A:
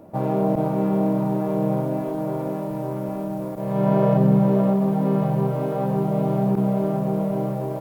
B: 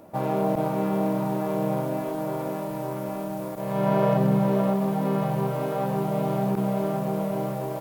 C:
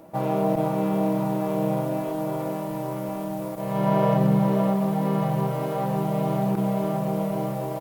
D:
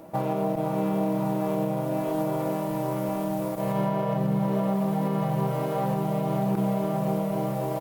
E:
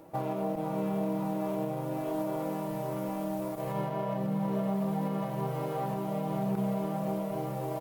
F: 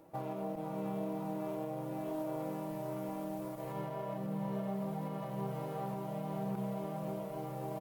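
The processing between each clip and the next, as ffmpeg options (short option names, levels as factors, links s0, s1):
-af "tiltshelf=f=870:g=-5.5"
-af "aecho=1:1:6.1:0.38"
-af "alimiter=limit=0.119:level=0:latency=1:release=490,volume=1.26"
-af "flanger=delay=2.2:depth=2.6:regen=-61:speed=0.53:shape=triangular,volume=0.841"
-af "aecho=1:1:707:0.299,volume=0.447"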